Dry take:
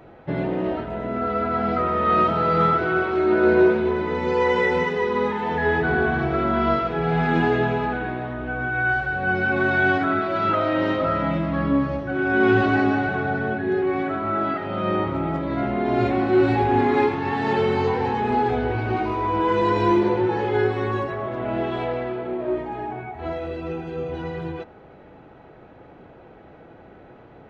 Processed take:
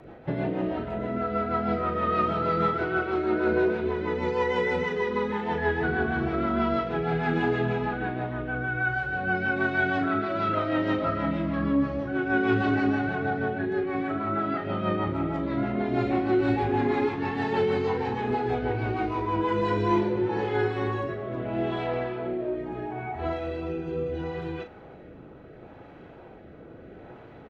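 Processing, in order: in parallel at +2 dB: compressor, threshold -30 dBFS, peak gain reduction 16.5 dB; on the sum: rotary speaker horn 6.3 Hz, later 0.75 Hz, at 19.37; doubler 39 ms -8.5 dB; gain -5.5 dB

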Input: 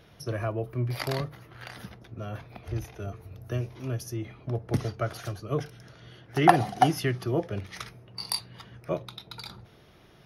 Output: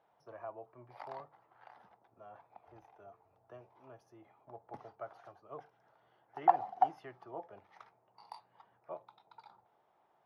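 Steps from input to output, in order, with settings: band-pass 850 Hz, Q 4.3; gain -3.5 dB

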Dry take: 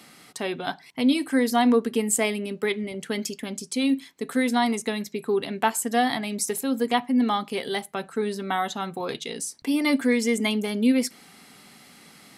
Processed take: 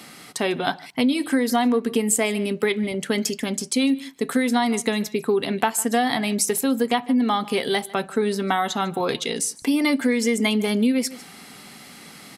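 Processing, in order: on a send: echo 0.15 s -23 dB; on the sum: compressor, threshold -24 dBFS, peak gain reduction 8.5 dB; gain +7 dB

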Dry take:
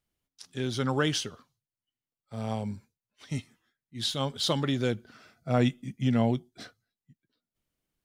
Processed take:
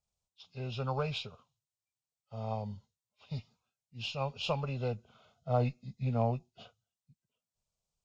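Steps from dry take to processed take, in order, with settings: nonlinear frequency compression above 1500 Hz 1.5:1; added harmonics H 4 -19 dB, 6 -30 dB, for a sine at -11.5 dBFS; fixed phaser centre 740 Hz, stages 4; gain -2 dB

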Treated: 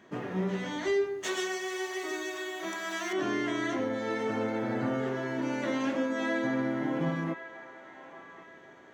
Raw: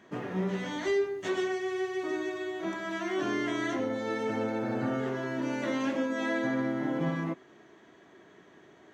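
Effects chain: 1.23–3.13 RIAA curve recording; band-limited delay 1.096 s, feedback 36%, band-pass 1300 Hz, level -10.5 dB

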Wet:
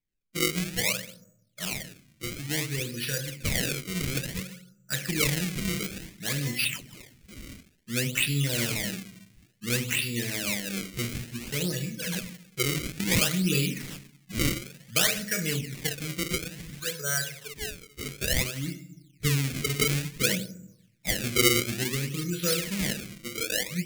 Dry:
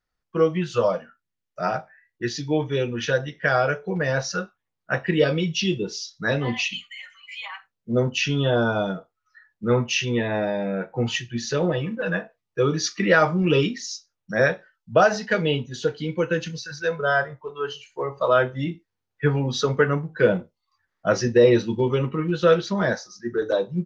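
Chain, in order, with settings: reverb RT60 0.70 s, pre-delay 6 ms, DRR 5.5 dB; decimation with a swept rate 29×, swing 160% 0.57 Hz; EQ curve 240 Hz 0 dB, 820 Hz -15 dB, 1400 Hz -6 dB, 2200 Hz +7 dB, 3300 Hz +4 dB, 7200 Hz +8 dB; gain -7.5 dB

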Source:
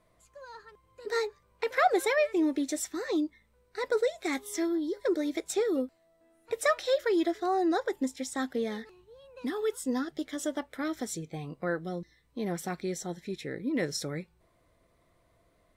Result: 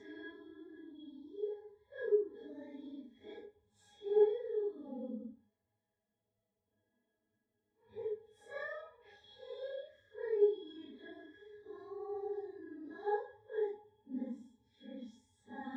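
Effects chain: Paulstretch 4.1×, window 0.05 s, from 4.57; octave resonator G#, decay 0.13 s

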